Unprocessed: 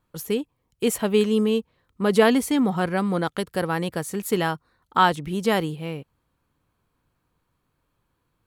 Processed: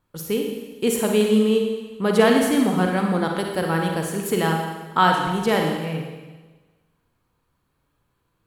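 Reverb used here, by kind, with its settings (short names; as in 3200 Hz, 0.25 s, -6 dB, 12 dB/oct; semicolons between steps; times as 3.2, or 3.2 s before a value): Schroeder reverb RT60 1.3 s, DRR 1.5 dB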